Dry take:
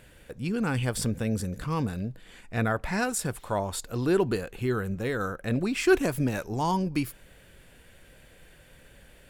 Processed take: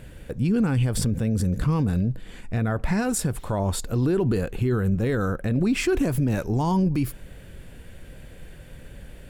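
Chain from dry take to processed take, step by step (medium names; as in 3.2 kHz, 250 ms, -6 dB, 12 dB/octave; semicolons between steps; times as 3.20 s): bass shelf 410 Hz +11 dB; peak limiter -18 dBFS, peak gain reduction 13 dB; trim +3 dB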